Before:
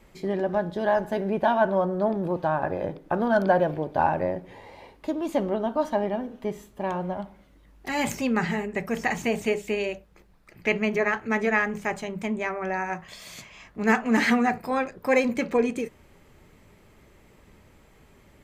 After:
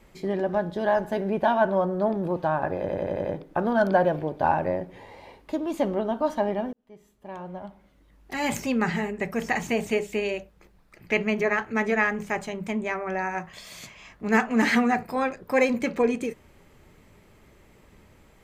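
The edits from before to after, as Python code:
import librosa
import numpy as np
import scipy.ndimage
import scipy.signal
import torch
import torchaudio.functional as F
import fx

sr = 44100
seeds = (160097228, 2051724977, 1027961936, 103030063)

y = fx.edit(x, sr, fx.stutter(start_s=2.8, slice_s=0.09, count=6),
    fx.fade_in_span(start_s=6.28, length_s=1.84), tone=tone)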